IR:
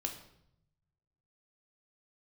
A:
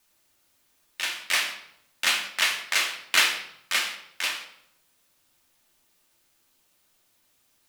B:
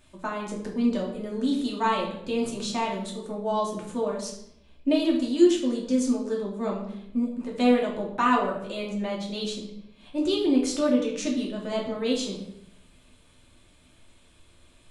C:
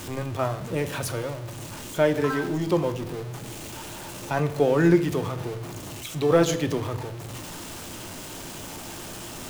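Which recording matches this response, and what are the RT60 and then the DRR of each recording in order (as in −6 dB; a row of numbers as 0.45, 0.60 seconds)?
A; 0.75, 0.75, 0.80 seconds; 2.5, −3.0, 8.5 decibels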